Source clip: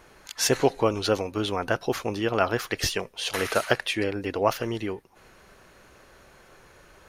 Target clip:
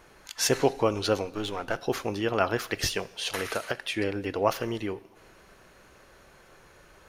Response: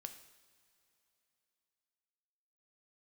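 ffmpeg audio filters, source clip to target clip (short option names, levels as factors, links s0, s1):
-filter_complex "[0:a]asettb=1/sr,asplit=3[s0][s1][s2];[s0]atrim=end=1.254[s3];[s1]atrim=start=1.25:end=1.77,asetpts=PTS-STARTPTS,afade=t=in:d=0.004:c=qsin,afade=t=out:st=0.516:d=0.004:c=qsin,aeval=exprs='if(lt(val(0),0),0.447*val(0),val(0))':c=same[s4];[s2]atrim=start=1.766[s5];[s3][s4]acrossfade=d=0.004:c1=hsin:c2=qsin[s6];[s6][s5]acrossfade=d=0.004:c1=qsin:c2=hsin,asettb=1/sr,asplit=3[s7][s8][s9];[s7]atrim=end=3.304[s10];[s8]atrim=start=3.3:end=3.97,asetpts=PTS-STARTPTS,afade=t=in:d=0.004:c=qsin,afade=t=out:st=0.666:d=0.004:c=qsin,acompressor=threshold=0.0562:ratio=6[s11];[s9]atrim=start=3.966[s12];[s10][s11]acrossfade=d=0.004:c1=hsin:c2=qsin[s13];[s13][s12]acrossfade=d=0.004:c1=qsin:c2=hsin,asplit=2[s14][s15];[1:a]atrim=start_sample=2205[s16];[s15][s16]afir=irnorm=-1:irlink=0,volume=0.841[s17];[s14][s17]amix=inputs=2:normalize=0,volume=0.562"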